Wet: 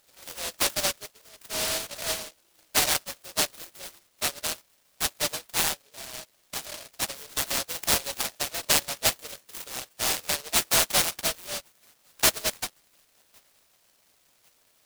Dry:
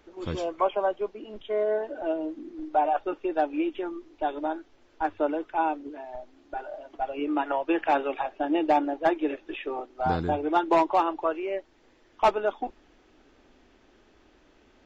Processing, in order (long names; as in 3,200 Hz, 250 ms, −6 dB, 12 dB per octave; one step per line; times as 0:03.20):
Butterworth high-pass 560 Hz 48 dB per octave
delay with a high-pass on its return 1,102 ms, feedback 49%, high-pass 4,200 Hz, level −13.5 dB
short delay modulated by noise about 4,100 Hz, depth 0.38 ms